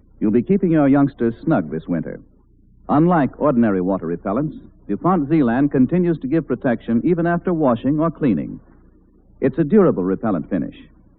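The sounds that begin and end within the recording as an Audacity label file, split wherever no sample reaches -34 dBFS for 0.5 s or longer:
2.890000	8.580000	sound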